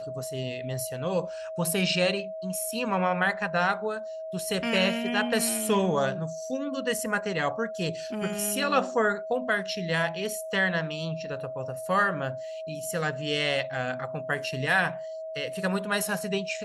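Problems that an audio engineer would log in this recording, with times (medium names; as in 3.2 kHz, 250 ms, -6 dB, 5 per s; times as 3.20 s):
whine 640 Hz -34 dBFS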